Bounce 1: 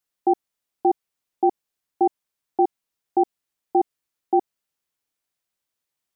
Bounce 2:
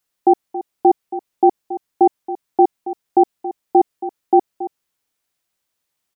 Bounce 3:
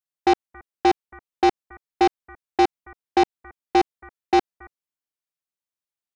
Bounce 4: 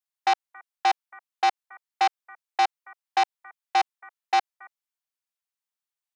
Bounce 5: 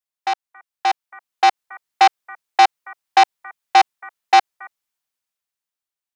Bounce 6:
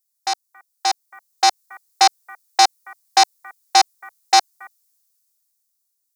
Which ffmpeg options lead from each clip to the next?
ffmpeg -i in.wav -af "aecho=1:1:276:0.2,volume=6.5dB" out.wav
ffmpeg -i in.wav -af "aeval=exprs='0.708*(cos(1*acos(clip(val(0)/0.708,-1,1)))-cos(1*PI/2))+0.112*(cos(7*acos(clip(val(0)/0.708,-1,1)))-cos(7*PI/2))':channel_layout=same,asoftclip=type=tanh:threshold=-11.5dB,volume=1dB" out.wav
ffmpeg -i in.wav -af "highpass=frequency=700:width=0.5412,highpass=frequency=700:width=1.3066" out.wav
ffmpeg -i in.wav -af "dynaudnorm=framelen=270:gausssize=9:maxgain=12dB" out.wav
ffmpeg -i in.wav -af "aexciter=amount=5.1:drive=7:freq=4200,volume=-2.5dB" out.wav

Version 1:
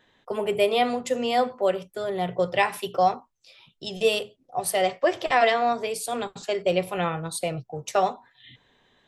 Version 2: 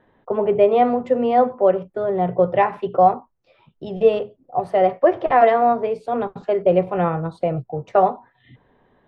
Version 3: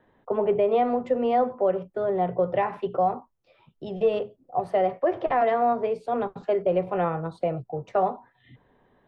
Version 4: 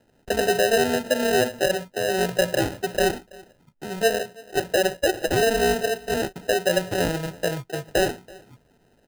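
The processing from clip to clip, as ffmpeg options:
ffmpeg -i in.wav -af "lowpass=1100,volume=7.5dB" out.wav
ffmpeg -i in.wav -filter_complex "[0:a]acrossover=split=260[link_01][link_02];[link_01]asoftclip=type=tanh:threshold=-29dB[link_03];[link_02]alimiter=limit=-11dB:level=0:latency=1:release=108[link_04];[link_03][link_04]amix=inputs=2:normalize=0,volume=-3.5dB" out.wav
ffmpeg -i in.wav -af "acrusher=samples=39:mix=1:aa=0.000001,aecho=1:1:330:0.0668,volume=1.5dB" out.wav

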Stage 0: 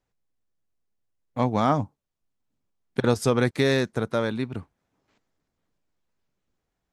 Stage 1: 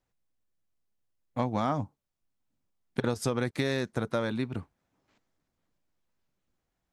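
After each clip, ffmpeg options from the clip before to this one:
ffmpeg -i in.wav -af "bandreject=frequency=430:width=12,acompressor=threshold=-23dB:ratio=6,volume=-1.5dB" out.wav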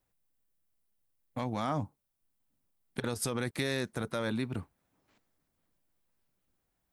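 ffmpeg -i in.wav -filter_complex "[0:a]acrossover=split=1600[link_01][link_02];[link_01]alimiter=level_in=0.5dB:limit=-24dB:level=0:latency=1:release=34,volume=-0.5dB[link_03];[link_02]aexciter=amount=1.7:drive=7.7:freq=8700[link_04];[link_03][link_04]amix=inputs=2:normalize=0" out.wav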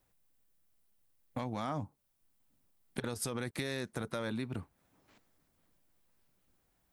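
ffmpeg -i in.wav -af "acompressor=threshold=-43dB:ratio=2.5,volume=5dB" out.wav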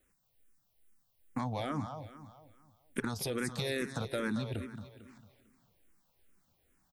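ffmpeg -i in.wav -filter_complex "[0:a]aecho=1:1:225|450|675|900|1125:0.316|0.139|0.0612|0.0269|0.0119,asplit=2[link_01][link_02];[link_02]afreqshift=-2.4[link_03];[link_01][link_03]amix=inputs=2:normalize=1,volume=5dB" out.wav

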